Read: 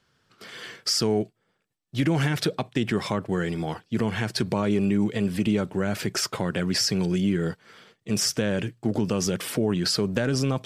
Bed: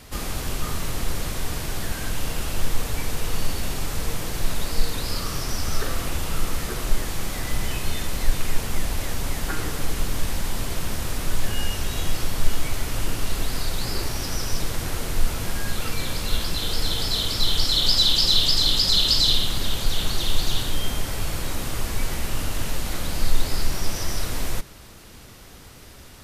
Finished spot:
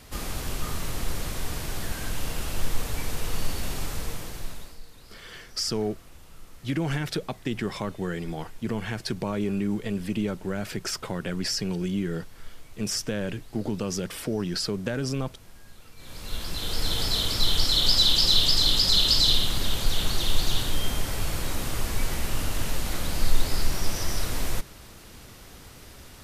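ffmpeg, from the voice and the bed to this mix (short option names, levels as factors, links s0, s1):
-filter_complex "[0:a]adelay=4700,volume=0.596[s0];[1:a]volume=7.94,afade=t=out:st=3.83:d=0.96:silence=0.105925,afade=t=in:st=15.96:d=1.03:silence=0.0841395[s1];[s0][s1]amix=inputs=2:normalize=0"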